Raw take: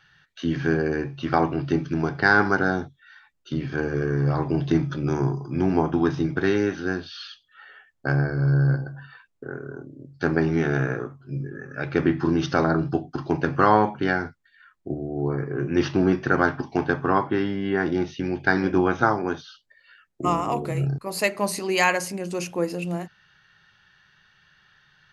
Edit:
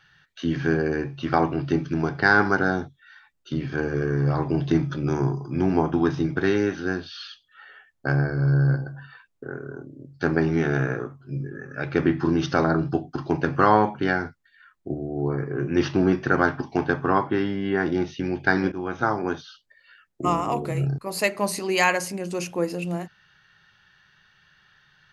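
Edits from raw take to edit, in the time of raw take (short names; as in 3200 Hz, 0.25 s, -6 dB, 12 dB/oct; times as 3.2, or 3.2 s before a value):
18.72–19.25 fade in, from -16 dB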